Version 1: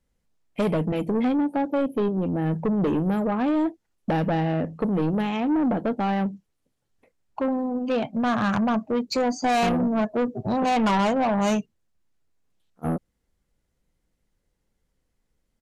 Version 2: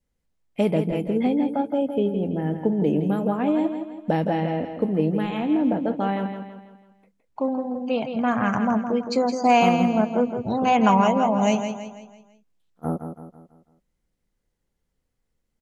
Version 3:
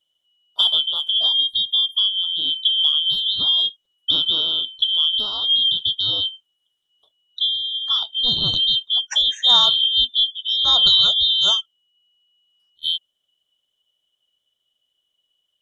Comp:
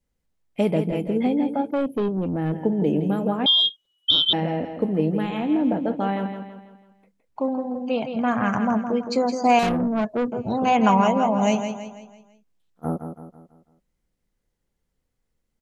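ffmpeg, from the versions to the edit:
-filter_complex "[0:a]asplit=2[a][b];[1:a]asplit=4[c][d][e][f];[c]atrim=end=1.712[g];[a]atrim=start=1.708:end=2.522[h];[d]atrim=start=2.518:end=3.462[i];[2:a]atrim=start=3.458:end=4.332[j];[e]atrim=start=4.328:end=9.592[k];[b]atrim=start=9.588:end=10.322[l];[f]atrim=start=10.318[m];[g][h]acrossfade=d=0.004:c1=hsin:c2=hsin[n];[n][i]acrossfade=d=0.004:c1=hsin:c2=hsin[o];[o][j]acrossfade=d=0.004:c1=hsin:c2=hsin[p];[p][k]acrossfade=d=0.004:c1=hsin:c2=hsin[q];[q][l]acrossfade=d=0.004:c1=hsin:c2=hsin[r];[r][m]acrossfade=d=0.004:c1=hsin:c2=hsin"

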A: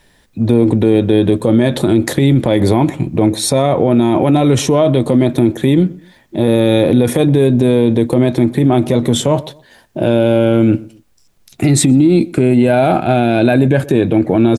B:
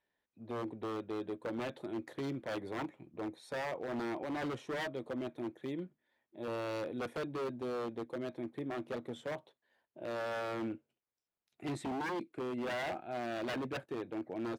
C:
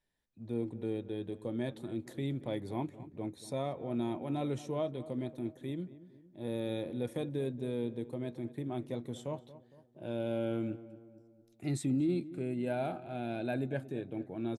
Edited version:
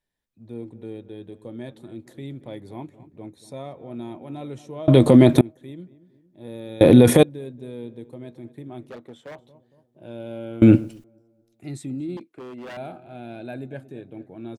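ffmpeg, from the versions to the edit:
-filter_complex "[0:a]asplit=3[a][b][c];[1:a]asplit=2[d][e];[2:a]asplit=6[f][g][h][i][j][k];[f]atrim=end=4.882[l];[a]atrim=start=4.878:end=5.412[m];[g]atrim=start=5.408:end=6.812[n];[b]atrim=start=6.808:end=7.232[o];[h]atrim=start=7.228:end=8.902[p];[d]atrim=start=8.898:end=9.392[q];[i]atrim=start=9.388:end=10.622[r];[c]atrim=start=10.618:end=11.042[s];[j]atrim=start=11.038:end=12.172[t];[e]atrim=start=12.168:end=12.772[u];[k]atrim=start=12.768[v];[l][m]acrossfade=d=0.004:c1=hsin:c2=hsin[w];[w][n]acrossfade=d=0.004:c1=hsin:c2=hsin[x];[x][o]acrossfade=d=0.004:c1=hsin:c2=hsin[y];[y][p]acrossfade=d=0.004:c1=hsin:c2=hsin[z];[z][q]acrossfade=d=0.004:c1=hsin:c2=hsin[aa];[aa][r]acrossfade=d=0.004:c1=hsin:c2=hsin[ab];[ab][s]acrossfade=d=0.004:c1=hsin:c2=hsin[ac];[ac][t]acrossfade=d=0.004:c1=hsin:c2=hsin[ad];[ad][u]acrossfade=d=0.004:c1=hsin:c2=hsin[ae];[ae][v]acrossfade=d=0.004:c1=hsin:c2=hsin"

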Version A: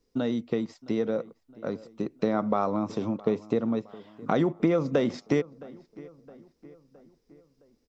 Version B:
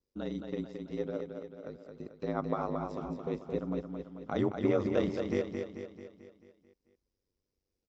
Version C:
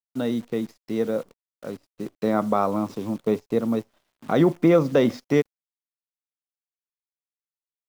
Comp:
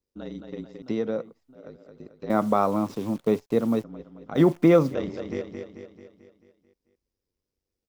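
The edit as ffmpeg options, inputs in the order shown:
-filter_complex "[2:a]asplit=2[a][b];[1:a]asplit=4[c][d][e][f];[c]atrim=end=0.822[g];[0:a]atrim=start=0.818:end=1.552[h];[d]atrim=start=1.548:end=2.302[i];[a]atrim=start=2.298:end=3.842[j];[e]atrim=start=3.838:end=4.4[k];[b]atrim=start=4.34:end=4.95[l];[f]atrim=start=4.89[m];[g][h]acrossfade=d=0.004:c1=hsin:c2=hsin[n];[n][i]acrossfade=d=0.004:c1=hsin:c2=hsin[o];[o][j]acrossfade=d=0.004:c1=hsin:c2=hsin[p];[p][k]acrossfade=d=0.004:c1=hsin:c2=hsin[q];[q][l]acrossfade=d=0.06:c1=tri:c2=tri[r];[r][m]acrossfade=d=0.06:c1=tri:c2=tri"

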